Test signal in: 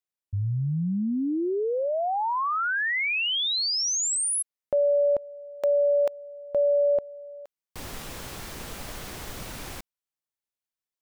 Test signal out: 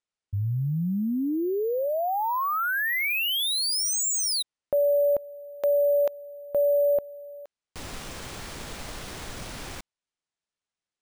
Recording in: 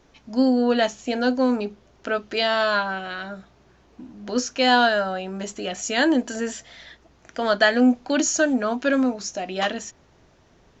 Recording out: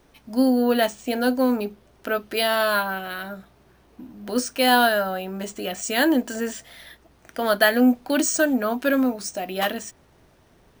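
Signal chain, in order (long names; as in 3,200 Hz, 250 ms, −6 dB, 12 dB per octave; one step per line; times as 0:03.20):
bad sample-rate conversion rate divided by 3×, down none, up hold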